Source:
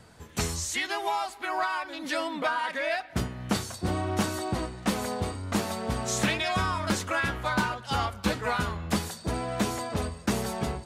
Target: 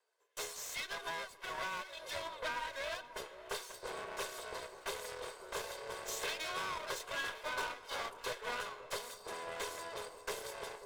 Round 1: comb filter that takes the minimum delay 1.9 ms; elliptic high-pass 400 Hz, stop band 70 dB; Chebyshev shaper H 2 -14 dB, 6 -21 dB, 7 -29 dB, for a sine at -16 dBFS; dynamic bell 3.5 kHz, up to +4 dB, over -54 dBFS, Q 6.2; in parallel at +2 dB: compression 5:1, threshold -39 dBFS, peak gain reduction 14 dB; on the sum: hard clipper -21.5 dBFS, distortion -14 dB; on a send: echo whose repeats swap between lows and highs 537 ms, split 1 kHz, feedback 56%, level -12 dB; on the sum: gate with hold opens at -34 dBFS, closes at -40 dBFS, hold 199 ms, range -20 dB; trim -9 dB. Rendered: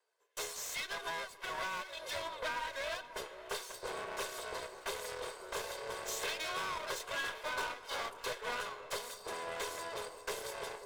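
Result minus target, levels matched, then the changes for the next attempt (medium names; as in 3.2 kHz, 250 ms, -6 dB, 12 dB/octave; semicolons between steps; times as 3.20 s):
compression: peak gain reduction -9 dB
change: compression 5:1, threshold -50.5 dBFS, peak gain reduction 23.5 dB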